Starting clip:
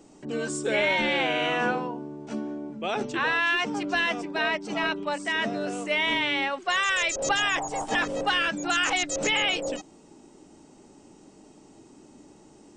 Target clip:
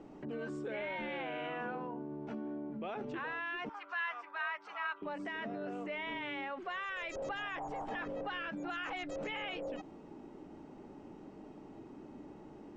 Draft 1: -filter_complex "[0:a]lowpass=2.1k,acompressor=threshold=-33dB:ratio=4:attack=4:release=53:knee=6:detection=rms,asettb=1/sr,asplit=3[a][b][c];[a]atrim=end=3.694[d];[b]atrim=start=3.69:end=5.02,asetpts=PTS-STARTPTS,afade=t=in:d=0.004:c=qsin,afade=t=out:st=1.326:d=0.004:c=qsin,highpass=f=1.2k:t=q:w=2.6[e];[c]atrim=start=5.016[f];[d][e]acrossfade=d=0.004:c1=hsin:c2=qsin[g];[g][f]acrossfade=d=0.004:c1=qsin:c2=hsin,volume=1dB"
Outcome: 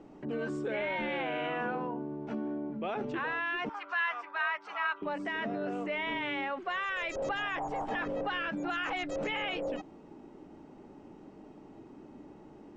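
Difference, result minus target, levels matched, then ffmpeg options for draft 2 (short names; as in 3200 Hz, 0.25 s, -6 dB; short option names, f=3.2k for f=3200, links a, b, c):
compressor: peak gain reduction -6 dB
-filter_complex "[0:a]lowpass=2.1k,acompressor=threshold=-41dB:ratio=4:attack=4:release=53:knee=6:detection=rms,asettb=1/sr,asplit=3[a][b][c];[a]atrim=end=3.694[d];[b]atrim=start=3.69:end=5.02,asetpts=PTS-STARTPTS,afade=t=in:d=0.004:c=qsin,afade=t=out:st=1.326:d=0.004:c=qsin,highpass=f=1.2k:t=q:w=2.6[e];[c]atrim=start=5.016[f];[d][e]acrossfade=d=0.004:c1=hsin:c2=qsin[g];[g][f]acrossfade=d=0.004:c1=qsin:c2=hsin,volume=1dB"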